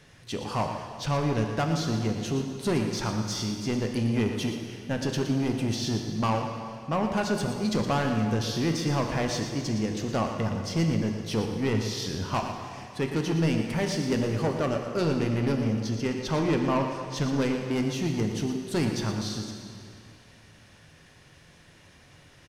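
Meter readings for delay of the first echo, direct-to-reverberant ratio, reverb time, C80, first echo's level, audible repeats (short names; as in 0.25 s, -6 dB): 0.117 s, 3.0 dB, 2.4 s, 4.5 dB, -10.0 dB, 1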